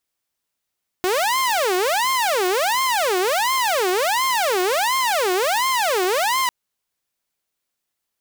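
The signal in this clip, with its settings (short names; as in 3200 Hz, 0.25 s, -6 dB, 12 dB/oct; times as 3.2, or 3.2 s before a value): siren wail 360–1060 Hz 1.4/s saw -15 dBFS 5.45 s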